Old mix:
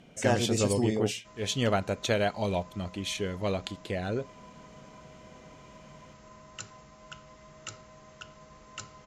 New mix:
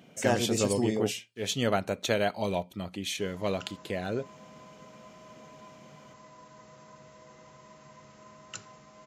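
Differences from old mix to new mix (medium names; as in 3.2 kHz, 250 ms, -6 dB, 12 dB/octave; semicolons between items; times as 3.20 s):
speech: remove low-pass 10 kHz 12 dB/octave; second sound: entry +1.95 s; master: add high-pass 120 Hz 12 dB/octave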